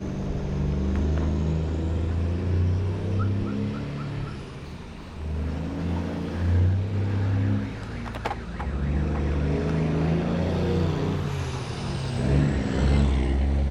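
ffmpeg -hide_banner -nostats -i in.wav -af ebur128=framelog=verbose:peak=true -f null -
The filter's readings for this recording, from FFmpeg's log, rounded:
Integrated loudness:
  I:         -26.5 LUFS
  Threshold: -36.7 LUFS
Loudness range:
  LRA:         4.1 LU
  Threshold: -47.0 LUFS
  LRA low:   -29.4 LUFS
  LRA high:  -25.2 LUFS
True peak:
  Peak:      -11.3 dBFS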